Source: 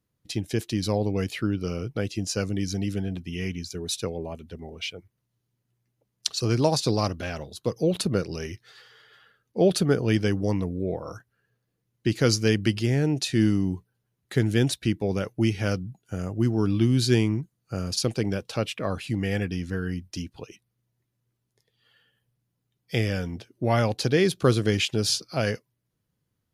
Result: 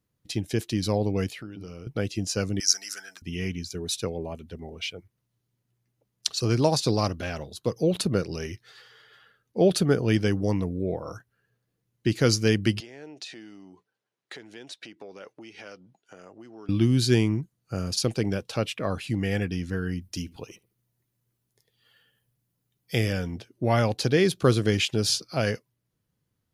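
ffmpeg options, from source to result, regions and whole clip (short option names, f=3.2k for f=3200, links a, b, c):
-filter_complex "[0:a]asettb=1/sr,asplit=3[a][b][c];[a]atrim=end=1.294[d];[b]atrim=start=1.29:end=1.87,asetpts=PTS-STARTPTS,afade=t=in:d=0.004:c=qsin,afade=t=out:st=0.576:d=0.004:c=qsin,bandreject=f=50:t=h:w=6,bandreject=f=100:t=h:w=6,bandreject=f=150:t=h:w=6,bandreject=f=200:t=h:w=6,bandreject=f=250:t=h:w=6,bandreject=f=300:t=h:w=6,bandreject=f=350:t=h:w=6,bandreject=f=400:t=h:w=6,acompressor=threshold=-39dB:ratio=3:attack=3.2:release=140:knee=1:detection=peak[e];[c]atrim=start=1.866[f];[d][e]acrossfade=d=0.004:c1=hsin:c2=qsin[g];[g][f]acrossfade=d=0.004:c1=qsin:c2=hsin,asettb=1/sr,asplit=3[h][i][j];[h]atrim=end=2.604[k];[i]atrim=start=2.6:end=3.22,asetpts=PTS-STARTPTS,afade=t=in:d=0.004:c=qsin,afade=t=out:st=0.616:d=0.004:c=qsin,highpass=f=1.4k:t=q:w=4.2,highshelf=f=4.2k:t=q:w=3:g=9.5[l];[j]atrim=start=3.216[m];[k][l]acrossfade=d=0.004:c1=hsin:c2=qsin[n];[n][m]acrossfade=d=0.004:c1=qsin:c2=hsin,asettb=1/sr,asplit=3[o][p][q];[o]atrim=end=12.804[r];[p]atrim=start=12.8:end=16.69,asetpts=PTS-STARTPTS,afade=t=in:d=0.004:c=qsin,afade=t=out:st=3.886:d=0.004:c=qsin,acompressor=threshold=-34dB:ratio=5:attack=3.2:release=140:knee=1:detection=peak,highpass=420,lowpass=6k[s];[q]atrim=start=16.686[t];[r][s]acrossfade=d=0.004:c1=hsin:c2=qsin[u];[u][t]acrossfade=d=0.004:c1=qsin:c2=hsin,asettb=1/sr,asplit=3[v][w][x];[v]atrim=end=20.014[y];[w]atrim=start=20.01:end=23.13,asetpts=PTS-STARTPTS,afade=t=in:d=0.004:c=qsin,afade=t=out:st=3.116:d=0.004:c=qsin,highshelf=f=9.4k:g=10,asplit=2[z][aa];[aa]adelay=72,lowpass=f=1.3k:p=1,volume=-19.5dB,asplit=2[ab][ac];[ac]adelay=72,lowpass=f=1.3k:p=1,volume=0.37,asplit=2[ad][ae];[ae]adelay=72,lowpass=f=1.3k:p=1,volume=0.37[af];[z][ab][ad][af]amix=inputs=4:normalize=0,atrim=end_sample=137592[ag];[x]atrim=start=23.126[ah];[y][ag]acrossfade=d=0.004:c1=hsin:c2=qsin[ai];[ai][ah]acrossfade=d=0.004:c1=qsin:c2=hsin"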